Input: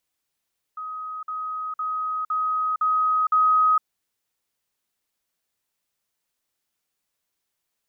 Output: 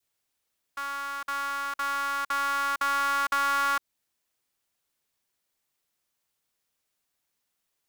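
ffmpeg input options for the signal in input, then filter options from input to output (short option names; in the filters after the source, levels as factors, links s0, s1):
-f lavfi -i "aevalsrc='pow(10,(-30+3*floor(t/0.51))/20)*sin(2*PI*1260*t)*clip(min(mod(t,0.51),0.46-mod(t,0.51))/0.005,0,1)':d=3.06:s=44100"
-af "adynamicequalizer=threshold=0.02:dfrequency=1200:dqfactor=1.3:tfrequency=1200:tqfactor=1.3:attack=5:release=100:ratio=0.375:range=1.5:mode=cutabove:tftype=bell,acompressor=threshold=0.0631:ratio=6,aeval=exprs='val(0)*sgn(sin(2*PI*140*n/s))':c=same"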